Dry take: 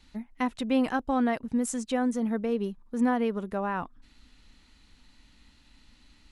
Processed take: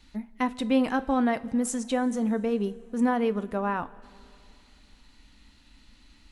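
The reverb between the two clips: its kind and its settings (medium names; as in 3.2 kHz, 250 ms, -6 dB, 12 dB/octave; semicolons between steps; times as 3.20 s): two-slope reverb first 0.25 s, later 2.8 s, from -18 dB, DRR 12 dB; trim +1.5 dB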